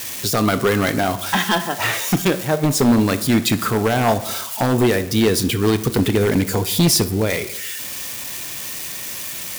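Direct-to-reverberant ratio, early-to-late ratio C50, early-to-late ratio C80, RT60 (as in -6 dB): 12.0 dB, 14.0 dB, 17.0 dB, 0.85 s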